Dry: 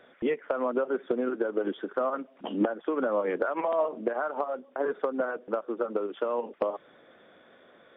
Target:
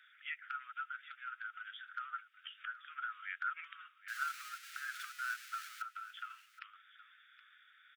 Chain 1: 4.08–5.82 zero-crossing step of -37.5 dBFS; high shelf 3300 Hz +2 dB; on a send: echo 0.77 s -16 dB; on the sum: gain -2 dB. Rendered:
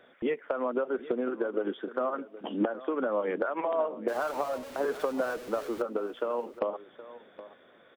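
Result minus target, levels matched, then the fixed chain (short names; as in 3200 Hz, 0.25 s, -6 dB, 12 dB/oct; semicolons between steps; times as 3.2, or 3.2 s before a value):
1000 Hz band -3.0 dB
4.08–5.82 zero-crossing step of -37.5 dBFS; Chebyshev high-pass 1300 Hz, order 8; high shelf 3300 Hz +2 dB; on a send: echo 0.77 s -16 dB; on the sum: gain -2 dB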